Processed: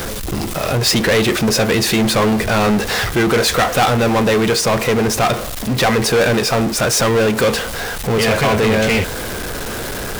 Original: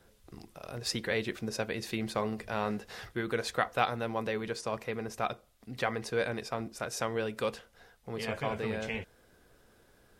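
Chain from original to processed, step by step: zero-crossing step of -38.5 dBFS; sample leveller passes 5; gain +2.5 dB

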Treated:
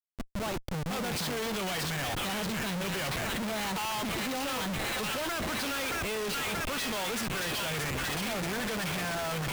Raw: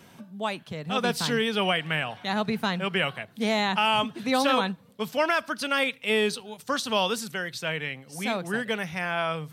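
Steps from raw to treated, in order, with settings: thin delay 0.63 s, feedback 69%, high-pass 1700 Hz, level -4 dB; tremolo 16 Hz, depth 55%; Schmitt trigger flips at -40 dBFS; gain -3 dB

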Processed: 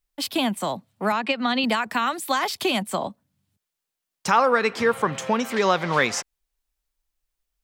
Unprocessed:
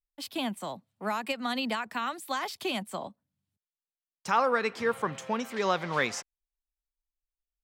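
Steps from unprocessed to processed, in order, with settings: 1.12–1.64 Chebyshev band-pass 150–3900 Hz, order 2; in parallel at +3 dB: compressor, threshold -34 dBFS, peak gain reduction 13.5 dB; on the sum: gain +4 dB

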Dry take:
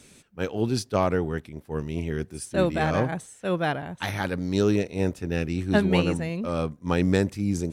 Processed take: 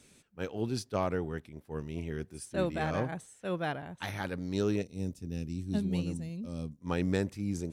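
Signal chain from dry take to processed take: 4.82–6.81 EQ curve 250 Hz 0 dB, 350 Hz -7 dB, 1500 Hz -18 dB, 5300 Hz 0 dB; gain -8 dB

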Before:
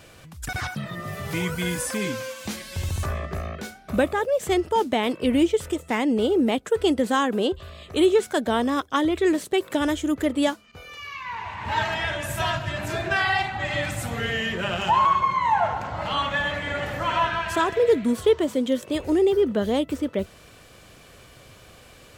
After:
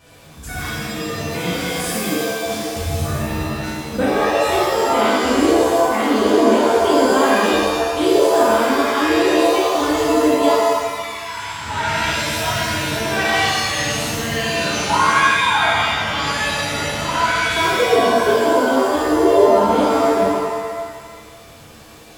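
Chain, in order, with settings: shimmer reverb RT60 1.3 s, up +7 st, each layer -2 dB, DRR -8.5 dB; gain -6 dB

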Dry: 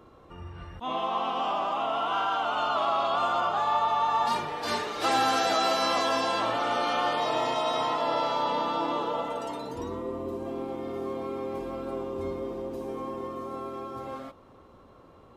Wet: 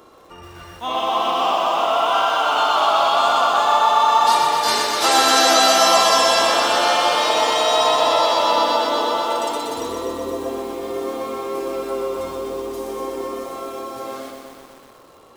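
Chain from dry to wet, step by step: tone controls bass -12 dB, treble +10 dB; lo-fi delay 0.125 s, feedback 80%, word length 9-bit, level -4.5 dB; gain +7.5 dB

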